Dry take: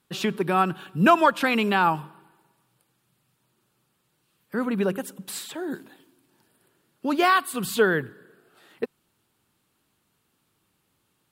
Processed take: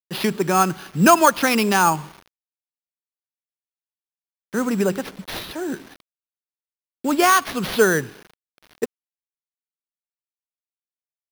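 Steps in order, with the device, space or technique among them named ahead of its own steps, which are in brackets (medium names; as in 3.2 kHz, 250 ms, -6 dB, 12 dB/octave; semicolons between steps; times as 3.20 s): early 8-bit sampler (sample-rate reducer 7.7 kHz, jitter 0%; bit crusher 8-bit); trim +4 dB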